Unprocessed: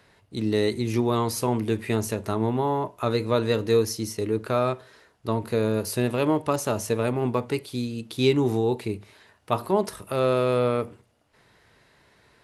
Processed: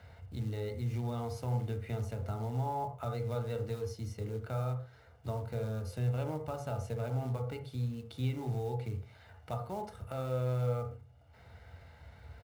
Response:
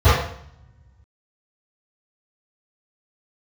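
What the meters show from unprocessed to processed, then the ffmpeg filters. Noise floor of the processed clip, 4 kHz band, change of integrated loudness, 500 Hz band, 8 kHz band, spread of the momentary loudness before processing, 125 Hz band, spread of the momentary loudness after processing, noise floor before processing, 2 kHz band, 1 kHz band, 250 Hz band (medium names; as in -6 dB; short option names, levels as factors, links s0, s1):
-58 dBFS, -18.5 dB, -11.5 dB, -15.0 dB, -20.0 dB, 8 LU, -4.0 dB, 14 LU, -62 dBFS, -16.0 dB, -12.0 dB, -16.0 dB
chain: -filter_complex "[0:a]acontrast=21,aecho=1:1:1.4:0.58,acompressor=threshold=0.00631:ratio=2,aemphasis=mode=reproduction:type=50fm,acrusher=bits=5:mode=log:mix=0:aa=0.000001,asplit=2[s0][s1];[1:a]atrim=start_sample=2205,afade=t=out:st=0.18:d=0.01,atrim=end_sample=8379,lowpass=2200[s2];[s1][s2]afir=irnorm=-1:irlink=0,volume=0.0376[s3];[s0][s3]amix=inputs=2:normalize=0,volume=0.447"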